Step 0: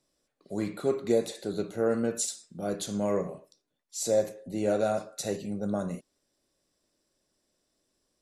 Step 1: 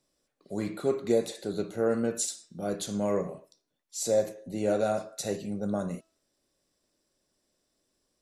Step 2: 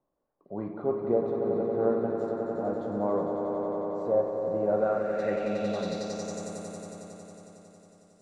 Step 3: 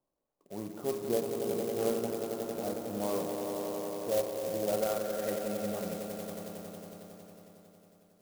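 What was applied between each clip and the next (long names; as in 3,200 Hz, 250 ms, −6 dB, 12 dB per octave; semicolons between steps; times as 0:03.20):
hum removal 326.6 Hz, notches 20
echo that builds up and dies away 91 ms, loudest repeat 5, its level −8 dB; low-pass filter sweep 950 Hz → 8,400 Hz, 0:04.67–0:06.53; level −3.5 dB
converter with an unsteady clock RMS 0.074 ms; level −5 dB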